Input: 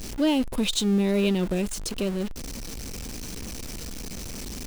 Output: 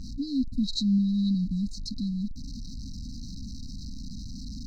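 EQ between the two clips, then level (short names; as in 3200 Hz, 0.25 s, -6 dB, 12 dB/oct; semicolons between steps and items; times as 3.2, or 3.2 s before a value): dynamic EQ 4500 Hz, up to +7 dB, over -46 dBFS, Q 1.4; brick-wall FIR band-stop 290–3800 Hz; air absorption 210 m; 0.0 dB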